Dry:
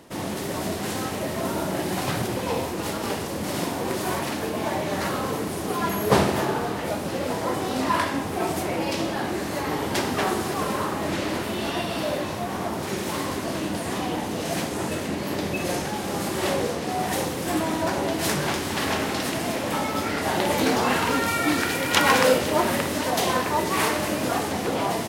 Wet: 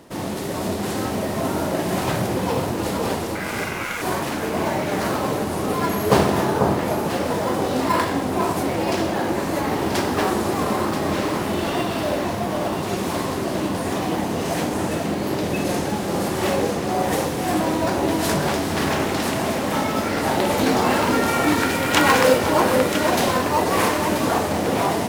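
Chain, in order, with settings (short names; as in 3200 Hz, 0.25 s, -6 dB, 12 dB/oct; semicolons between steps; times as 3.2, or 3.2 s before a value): 3.35–4.02 ring modulator 1800 Hz; in parallel at -8 dB: decimation with a swept rate 11×, swing 60% 0.4 Hz; on the sum: echo with dull and thin repeats by turns 0.491 s, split 1200 Hz, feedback 57%, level -3.5 dB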